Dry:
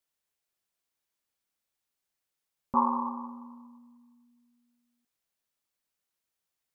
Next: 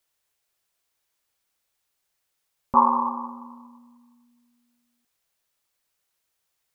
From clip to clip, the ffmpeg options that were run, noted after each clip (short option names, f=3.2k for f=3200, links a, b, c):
-af "equalizer=f=230:w=1.3:g=-6,volume=8.5dB"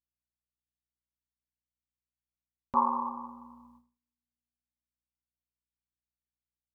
-af "aeval=exprs='val(0)+0.001*(sin(2*PI*60*n/s)+sin(2*PI*2*60*n/s)/2+sin(2*PI*3*60*n/s)/3+sin(2*PI*4*60*n/s)/4+sin(2*PI*5*60*n/s)/5)':c=same,agate=range=-32dB:threshold=-49dB:ratio=16:detection=peak,volume=-8.5dB"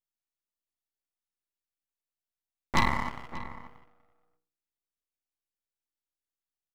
-filter_complex "[0:a]aeval=exprs='0.237*(cos(1*acos(clip(val(0)/0.237,-1,1)))-cos(1*PI/2))+0.0944*(cos(6*acos(clip(val(0)/0.237,-1,1)))-cos(6*PI/2))':c=same,aeval=exprs='abs(val(0))':c=same,asplit=2[a][b];[b]adelay=583.1,volume=-14dB,highshelf=f=4k:g=-13.1[c];[a][c]amix=inputs=2:normalize=0,volume=-2dB"